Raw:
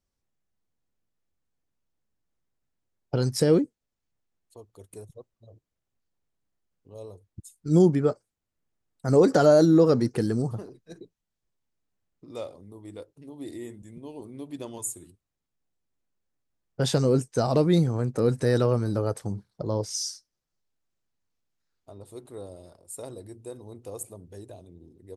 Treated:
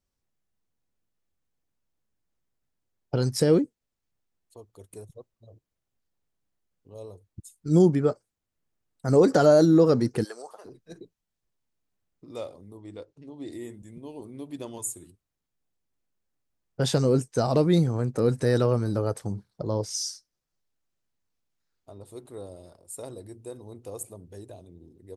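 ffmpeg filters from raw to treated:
ffmpeg -i in.wav -filter_complex "[0:a]asplit=3[link_01][link_02][link_03];[link_01]afade=type=out:start_time=10.23:duration=0.02[link_04];[link_02]highpass=frequency=570:width=0.5412,highpass=frequency=570:width=1.3066,afade=type=in:start_time=10.23:duration=0.02,afade=type=out:start_time=10.64:duration=0.02[link_05];[link_03]afade=type=in:start_time=10.64:duration=0.02[link_06];[link_04][link_05][link_06]amix=inputs=3:normalize=0,asettb=1/sr,asplit=3[link_07][link_08][link_09];[link_07]atrim=end=12.774[link_10];[link_08]atrim=start=12.77:end=13.51,asetpts=PTS-STARTPTS,afade=type=in:duration=0.004:curve=qsin,afade=type=out:start_time=0.736:duration=0.004:curve=qsin,lowpass=frequency=7100:width=0.5412,lowpass=frequency=7100:width=1.3066[link_11];[link_09]atrim=start=13.506[link_12];[link_10][link_11]acrossfade=duration=0.004:curve1=hsin:curve2=qsin[link_13];[link_13][link_12]acrossfade=duration=0.004:curve1=qsin:curve2=hsin" out.wav

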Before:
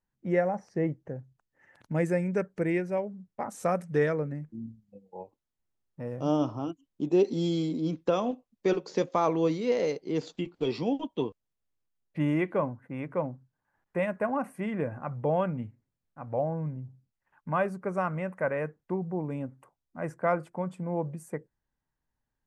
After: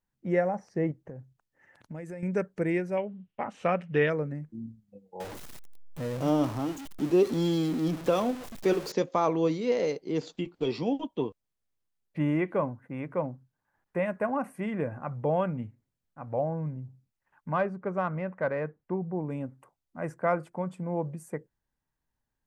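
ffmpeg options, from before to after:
ffmpeg -i in.wav -filter_complex "[0:a]asettb=1/sr,asplit=3[link_01][link_02][link_03];[link_01]atrim=end=0.914[link_04];[link_02]atrim=start=0.91:end=2.23,asetpts=PTS-STARTPTS,afade=type=in:duration=0.004:curve=qsin,afade=type=out:start_time=1.316:duration=0.004:curve=qsin,acompressor=threshold=-37dB:ratio=6:attack=3.2:release=140:knee=1:detection=peak[link_05];[link_03]atrim=start=2.226[link_06];[link_04][link_05]acrossfade=duration=0.004:curve1=hsin:curve2=qsin[link_07];[link_07][link_06]acrossfade=duration=0.004:curve1=qsin:curve2=hsin,asettb=1/sr,asplit=3[link_08][link_09][link_10];[link_08]atrim=end=2.974[link_11];[link_09]atrim=start=2.97:end=4.1,asetpts=PTS-STARTPTS,afade=type=in:duration=0.004:curve=qsin,afade=type=out:start_time=1.126:duration=0.004:curve=qsin,lowpass=frequency=2900:width_type=q:width=5.2[link_12];[link_10]atrim=start=4.096[link_13];[link_11][link_12]acrossfade=duration=0.004:curve1=hsin:curve2=qsin[link_14];[link_14][link_13]acrossfade=duration=0.004:curve1=qsin:curve2=hsin,asettb=1/sr,asplit=3[link_15][link_16][link_17];[link_15]atrim=end=5.204[link_18];[link_16]atrim=start=5.2:end=8.92,asetpts=PTS-STARTPTS,afade=type=in:duration=0.004:curve=qsin,afade=type=out:start_time=3.716:duration=0.004:curve=qsin,aeval=exprs='val(0)+0.5*0.0178*sgn(val(0))':channel_layout=same[link_19];[link_17]atrim=start=8.916[link_20];[link_18][link_19]acrossfade=duration=0.004:curve1=hsin:curve2=qsin[link_21];[link_21][link_20]acrossfade=duration=0.004:curve1=qsin:curve2=hsin,asettb=1/sr,asplit=3[link_22][link_23][link_24];[link_22]atrim=end=11.114[link_25];[link_23]atrim=start=11.11:end=14.06,asetpts=PTS-STARTPTS,afade=type=in:duration=0.004:curve=qsin,afade=type=out:start_time=2.946:duration=0.004:curve=qsin,acrossover=split=2900[link_26][link_27];[link_27]acompressor=threshold=-54dB:ratio=4:attack=1:release=60[link_28];[link_26][link_28]amix=inputs=2:normalize=0[link_29];[link_24]atrim=start=14.056[link_30];[link_25][link_29]acrossfade=duration=0.004:curve1=hsin:curve2=qsin[link_31];[link_31][link_30]acrossfade=duration=0.004:curve1=qsin:curve2=hsin,asettb=1/sr,asplit=3[link_32][link_33][link_34];[link_32]atrim=end=17.524[link_35];[link_33]atrim=start=17.52:end=19.27,asetpts=PTS-STARTPTS,afade=type=in:duration=0.004:curve=qsin,afade=type=out:start_time=1.746:duration=0.004:curve=qsin,adynamicsmooth=sensitivity=1:basefreq=3200[link_36];[link_34]atrim=start=19.266[link_37];[link_35][link_36]acrossfade=duration=0.004:curve1=hsin:curve2=qsin[link_38];[link_38][link_37]acrossfade=duration=0.004:curve1=qsin:curve2=hsin" out.wav

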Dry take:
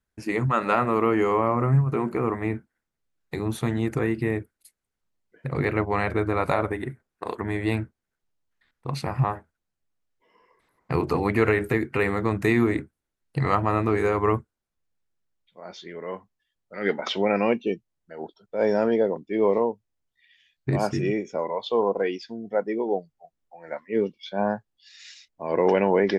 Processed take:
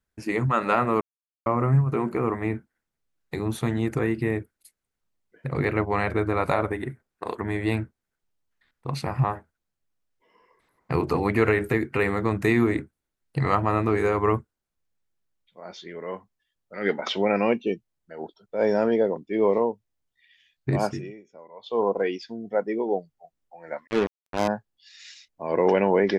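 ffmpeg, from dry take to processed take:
ffmpeg -i in.wav -filter_complex "[0:a]asettb=1/sr,asplit=3[link_01][link_02][link_03];[link_01]atrim=end=23.874[link_04];[link_02]atrim=start=23.87:end=24.48,asetpts=PTS-STARTPTS,afade=type=in:duration=0.004:curve=qsin,afade=type=out:start_time=0.606:duration=0.004:curve=qsin,acrusher=bits=3:mix=0:aa=0.5[link_05];[link_03]atrim=start=24.476[link_06];[link_04][link_05]acrossfade=duration=0.004:curve1=hsin:curve2=qsin[link_07];[link_07][link_06]acrossfade=duration=0.004:curve1=qsin:curve2=hsin,asplit=5[link_08][link_09][link_10][link_11][link_12];[link_08]atrim=end=1.01,asetpts=PTS-STARTPTS,afade=type=out:start_time=1.006:duration=0.004:curve=hsin[link_13];[link_09]atrim=start=1.01:end=1.46,asetpts=PTS-STARTPTS,volume=0[link_14];[link_10]atrim=start=1.46:end=21.19,asetpts=PTS-STARTPTS,afade=type=in:duration=0.004:curve=hsin,afade=type=out:start_time=19.39:duration=0.34:curve=qua:silence=0.112202[link_15];[link_11]atrim=start=21.19:end=21.48,asetpts=PTS-STARTPTS,volume=-19dB[link_16];[link_12]atrim=start=21.48,asetpts=PTS-STARTPTS,afade=type=in:duration=0.34:curve=qua:silence=0.112202[link_17];[link_13][link_14][link_15][link_16][link_17]concat=n=5:v=0:a=1" out.wav

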